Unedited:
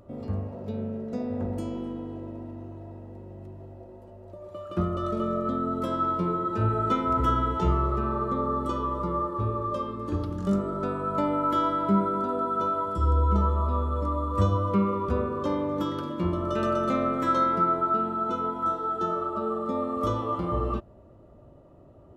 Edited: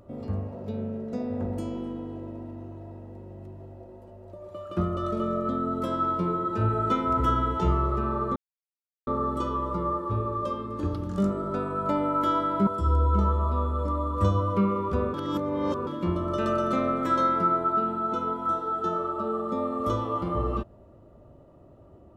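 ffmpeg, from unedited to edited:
ffmpeg -i in.wav -filter_complex "[0:a]asplit=5[link_01][link_02][link_03][link_04][link_05];[link_01]atrim=end=8.36,asetpts=PTS-STARTPTS,afade=type=out:start_time=8.356:duration=0.004:curve=hsin,apad=pad_dur=0.71[link_06];[link_02]atrim=start=8.36:end=11.962,asetpts=PTS-STARTPTS,afade=type=in:duration=0.004:curve=hsin[link_07];[link_03]atrim=start=12.838:end=15.312[link_08];[link_04]atrim=start=15.308:end=16.042,asetpts=PTS-STARTPTS,areverse[link_09];[link_05]atrim=start=16.038[link_10];[link_06][link_07]concat=n=2:v=0:a=1[link_11];[link_11][link_08]acrossfade=duration=0.004:curve1=hsin:curve2=hsin[link_12];[link_12][link_09]acrossfade=duration=0.004:curve1=hsin:curve2=hsin[link_13];[link_13][link_10]acrossfade=duration=0.004:curve1=hsin:curve2=hsin" out.wav

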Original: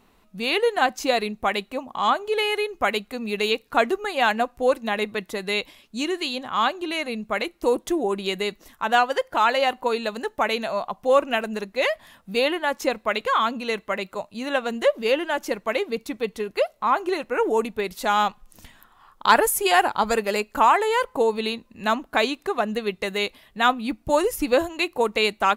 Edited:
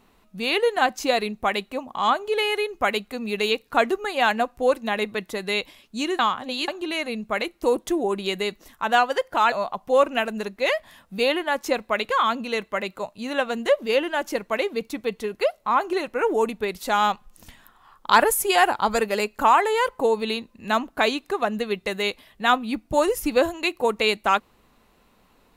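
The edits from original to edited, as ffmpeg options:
ffmpeg -i in.wav -filter_complex "[0:a]asplit=4[link_01][link_02][link_03][link_04];[link_01]atrim=end=6.192[link_05];[link_02]atrim=start=6.188:end=6.682,asetpts=PTS-STARTPTS,areverse[link_06];[link_03]atrim=start=6.678:end=9.522[link_07];[link_04]atrim=start=10.678[link_08];[link_05][link_06]acrossfade=duration=0.004:curve1=hsin:curve2=hsin[link_09];[link_09][link_07]acrossfade=duration=0.004:curve1=hsin:curve2=hsin[link_10];[link_10][link_08]acrossfade=duration=0.004:curve1=hsin:curve2=hsin" out.wav

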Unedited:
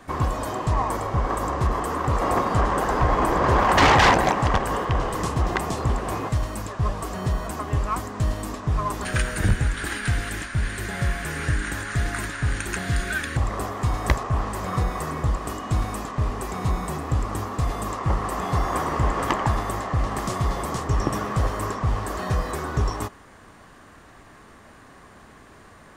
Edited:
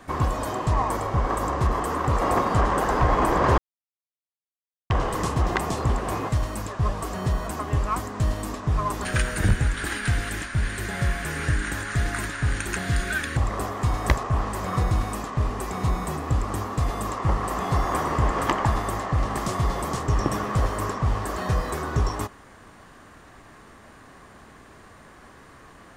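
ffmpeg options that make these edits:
ffmpeg -i in.wav -filter_complex "[0:a]asplit=4[link_01][link_02][link_03][link_04];[link_01]atrim=end=3.58,asetpts=PTS-STARTPTS,afade=type=out:start_time=3.576:duration=0.004:curve=hsin[link_05];[link_02]atrim=start=3.58:end=4.9,asetpts=PTS-STARTPTS,volume=0[link_06];[link_03]atrim=start=4.9:end=14.912,asetpts=PTS-STARTPTS,afade=type=in:duration=0.004:curve=hsin[link_07];[link_04]atrim=start=15.718[link_08];[link_05][link_06][link_07]concat=n=3:v=0:a=1[link_09];[link_09][link_08]acrossfade=duration=0.004:curve1=hsin:curve2=hsin" out.wav

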